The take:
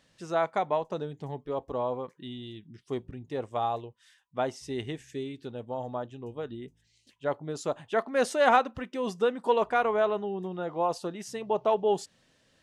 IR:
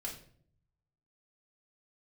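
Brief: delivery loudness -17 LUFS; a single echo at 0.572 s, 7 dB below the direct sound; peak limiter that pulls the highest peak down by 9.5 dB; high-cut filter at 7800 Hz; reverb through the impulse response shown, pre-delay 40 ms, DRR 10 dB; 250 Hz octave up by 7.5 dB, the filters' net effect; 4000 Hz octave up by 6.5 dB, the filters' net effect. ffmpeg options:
-filter_complex "[0:a]lowpass=7.8k,equalizer=f=250:t=o:g=9,equalizer=f=4k:t=o:g=8.5,alimiter=limit=-17.5dB:level=0:latency=1,aecho=1:1:572:0.447,asplit=2[a][b];[1:a]atrim=start_sample=2205,adelay=40[c];[b][c]afir=irnorm=-1:irlink=0,volume=-9.5dB[d];[a][d]amix=inputs=2:normalize=0,volume=12dB"

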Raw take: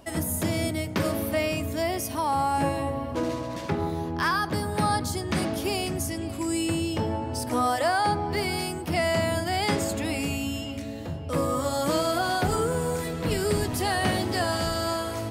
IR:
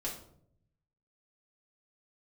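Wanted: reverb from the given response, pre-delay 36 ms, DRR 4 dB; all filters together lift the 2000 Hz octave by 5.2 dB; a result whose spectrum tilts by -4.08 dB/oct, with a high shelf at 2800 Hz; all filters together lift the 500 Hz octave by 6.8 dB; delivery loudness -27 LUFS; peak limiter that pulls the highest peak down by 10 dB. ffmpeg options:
-filter_complex "[0:a]equalizer=f=500:t=o:g=8.5,equalizer=f=2k:t=o:g=3.5,highshelf=f=2.8k:g=6.5,alimiter=limit=-18.5dB:level=0:latency=1,asplit=2[a][b];[1:a]atrim=start_sample=2205,adelay=36[c];[b][c]afir=irnorm=-1:irlink=0,volume=-5.5dB[d];[a][d]amix=inputs=2:normalize=0,volume=-2dB"

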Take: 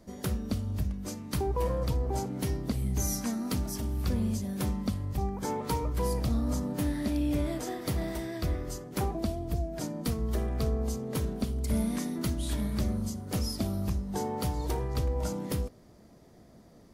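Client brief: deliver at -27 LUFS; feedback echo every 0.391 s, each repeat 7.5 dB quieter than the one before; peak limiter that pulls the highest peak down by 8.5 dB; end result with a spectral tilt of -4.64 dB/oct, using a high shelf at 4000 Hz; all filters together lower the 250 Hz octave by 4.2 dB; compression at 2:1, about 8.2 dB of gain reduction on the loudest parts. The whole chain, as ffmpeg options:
-af "equalizer=f=250:t=o:g=-5.5,highshelf=f=4k:g=7,acompressor=threshold=-41dB:ratio=2,alimiter=level_in=7dB:limit=-24dB:level=0:latency=1,volume=-7dB,aecho=1:1:391|782|1173|1564|1955:0.422|0.177|0.0744|0.0312|0.0131,volume=13.5dB"

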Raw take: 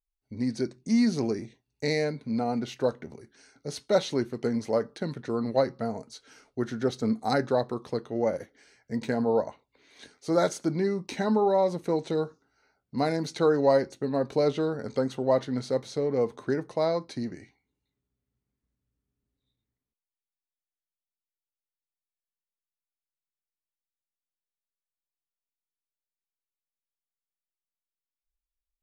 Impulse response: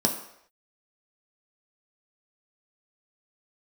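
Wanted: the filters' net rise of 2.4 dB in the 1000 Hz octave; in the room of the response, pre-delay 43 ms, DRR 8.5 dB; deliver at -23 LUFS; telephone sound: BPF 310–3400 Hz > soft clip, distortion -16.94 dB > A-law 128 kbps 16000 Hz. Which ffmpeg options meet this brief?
-filter_complex "[0:a]equalizer=f=1k:t=o:g=3.5,asplit=2[a][b];[1:a]atrim=start_sample=2205,adelay=43[c];[b][c]afir=irnorm=-1:irlink=0,volume=-19dB[d];[a][d]amix=inputs=2:normalize=0,highpass=310,lowpass=3.4k,asoftclip=threshold=-16.5dB,volume=6dB" -ar 16000 -c:a pcm_alaw

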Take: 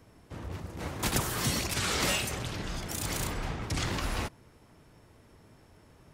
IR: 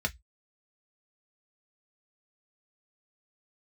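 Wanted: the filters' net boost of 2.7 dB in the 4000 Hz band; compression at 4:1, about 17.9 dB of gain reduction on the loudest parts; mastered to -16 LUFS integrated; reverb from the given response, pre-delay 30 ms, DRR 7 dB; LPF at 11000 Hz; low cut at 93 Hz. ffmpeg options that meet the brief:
-filter_complex "[0:a]highpass=93,lowpass=11k,equalizer=f=4k:t=o:g=3.5,acompressor=threshold=-47dB:ratio=4,asplit=2[a][b];[1:a]atrim=start_sample=2205,adelay=30[c];[b][c]afir=irnorm=-1:irlink=0,volume=-13.5dB[d];[a][d]amix=inputs=2:normalize=0,volume=29.5dB"

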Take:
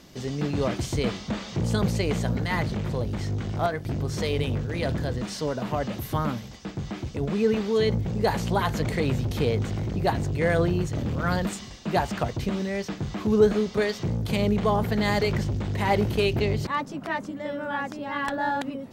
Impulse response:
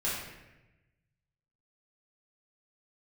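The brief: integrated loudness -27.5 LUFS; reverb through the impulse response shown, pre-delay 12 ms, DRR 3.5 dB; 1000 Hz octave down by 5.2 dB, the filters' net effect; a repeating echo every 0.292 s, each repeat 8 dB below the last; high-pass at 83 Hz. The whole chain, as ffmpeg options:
-filter_complex "[0:a]highpass=83,equalizer=f=1k:t=o:g=-7,aecho=1:1:292|584|876|1168|1460:0.398|0.159|0.0637|0.0255|0.0102,asplit=2[a][b];[1:a]atrim=start_sample=2205,adelay=12[c];[b][c]afir=irnorm=-1:irlink=0,volume=-11dB[d];[a][d]amix=inputs=2:normalize=0,volume=-2.5dB"

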